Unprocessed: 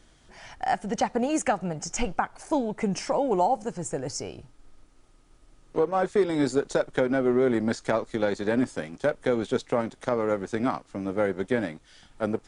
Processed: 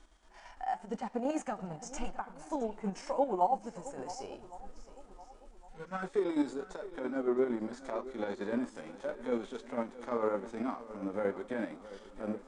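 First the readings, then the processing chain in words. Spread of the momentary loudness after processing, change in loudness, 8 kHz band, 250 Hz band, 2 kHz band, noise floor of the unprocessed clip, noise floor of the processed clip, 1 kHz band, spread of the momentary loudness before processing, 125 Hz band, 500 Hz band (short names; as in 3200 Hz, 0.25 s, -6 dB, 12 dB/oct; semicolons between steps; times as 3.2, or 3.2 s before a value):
18 LU, -9.0 dB, -14.0 dB, -8.5 dB, -12.0 dB, -58 dBFS, -57 dBFS, -7.5 dB, 9 LU, -13.5 dB, -9.5 dB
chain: spectral gain 5.51–6.03, 240–1300 Hz -18 dB; high shelf 7100 Hz -9.5 dB; chopper 8.8 Hz, depth 65%, duty 50%; graphic EQ 125/1000/8000 Hz -11/+7/+6 dB; in parallel at -2.5 dB: compressor, threshold -38 dBFS, peak gain reduction 21 dB; on the sum: harmonic-percussive split percussive -16 dB; vocal rider within 5 dB 2 s; flange 0.85 Hz, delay 2.5 ms, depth 8.9 ms, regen -67%; on a send: swung echo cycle 1.111 s, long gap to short 1.5:1, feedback 31%, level -16 dB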